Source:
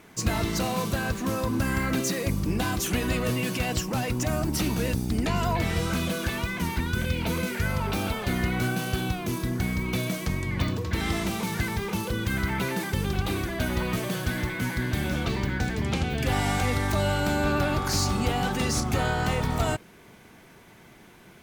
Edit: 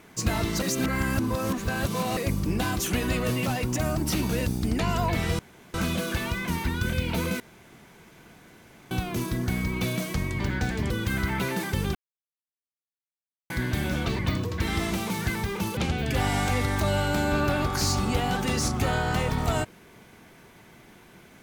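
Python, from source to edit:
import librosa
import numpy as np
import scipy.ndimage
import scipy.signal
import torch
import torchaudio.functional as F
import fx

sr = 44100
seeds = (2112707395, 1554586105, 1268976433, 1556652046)

y = fx.edit(x, sr, fx.reverse_span(start_s=0.62, length_s=1.55),
    fx.cut(start_s=3.46, length_s=0.47),
    fx.insert_room_tone(at_s=5.86, length_s=0.35),
    fx.room_tone_fill(start_s=7.52, length_s=1.51),
    fx.swap(start_s=10.52, length_s=1.58, other_s=15.39, other_length_s=0.5),
    fx.silence(start_s=13.15, length_s=1.55), tone=tone)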